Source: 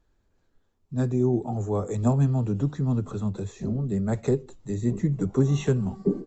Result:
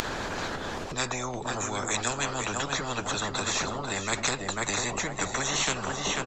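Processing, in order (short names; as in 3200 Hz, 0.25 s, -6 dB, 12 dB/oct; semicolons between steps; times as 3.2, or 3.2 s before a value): air absorption 72 m; feedback echo 0.493 s, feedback 16%, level -9.5 dB; harmonic-percussive split harmonic -5 dB; upward compressor, threshold -27 dBFS; spectral compressor 10:1; gain +4 dB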